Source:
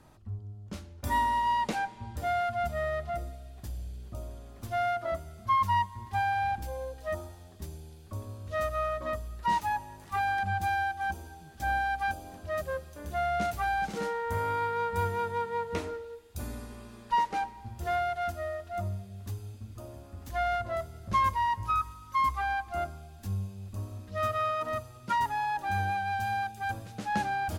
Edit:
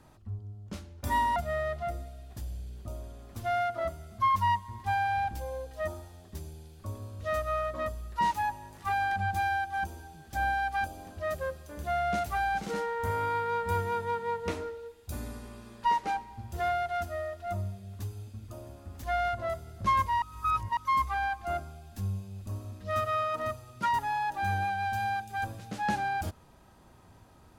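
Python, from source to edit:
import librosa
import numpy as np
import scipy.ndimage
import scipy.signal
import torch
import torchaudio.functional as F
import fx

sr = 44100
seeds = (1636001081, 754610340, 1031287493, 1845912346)

y = fx.edit(x, sr, fx.cut(start_s=1.36, length_s=1.27),
    fx.reverse_span(start_s=21.49, length_s=0.55), tone=tone)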